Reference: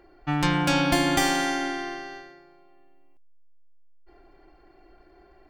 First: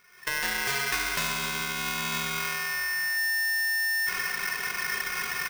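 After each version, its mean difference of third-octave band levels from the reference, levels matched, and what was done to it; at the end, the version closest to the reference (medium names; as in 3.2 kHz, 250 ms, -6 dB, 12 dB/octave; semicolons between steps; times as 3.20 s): 19.0 dB: recorder AGC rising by 49 dB/s; speakerphone echo 280 ms, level -13 dB; polarity switched at an audio rate 1.8 kHz; trim -7 dB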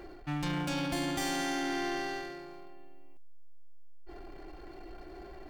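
9.5 dB: peaking EQ 1.3 kHz -4 dB 2.2 oct; reverse; compression 10:1, threshold -33 dBFS, peak gain reduction 15 dB; reverse; power-law waveshaper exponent 0.7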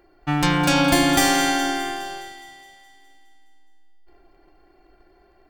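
4.0 dB: treble shelf 6.8 kHz +7.5 dB; waveshaping leveller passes 1; echo whose repeats swap between lows and highs 104 ms, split 1.2 kHz, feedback 78%, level -10 dB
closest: third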